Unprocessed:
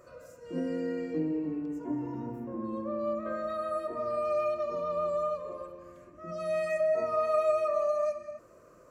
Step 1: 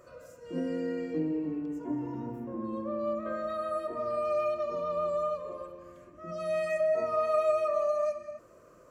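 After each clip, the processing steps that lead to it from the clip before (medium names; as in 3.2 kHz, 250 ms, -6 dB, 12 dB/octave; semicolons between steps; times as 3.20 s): peaking EQ 3.2 kHz +4 dB 0.27 oct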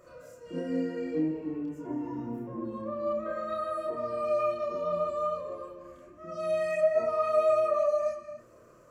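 chorus voices 4, 0.48 Hz, delay 30 ms, depth 4.8 ms; trim +3.5 dB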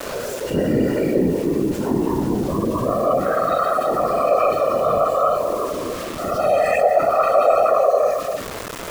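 whisper effect; bit crusher 9-bit; level flattener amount 50%; trim +7 dB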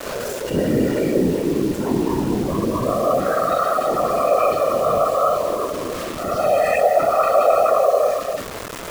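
bit crusher 6-bit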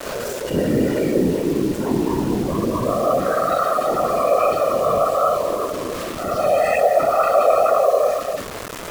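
wow and flutter 29 cents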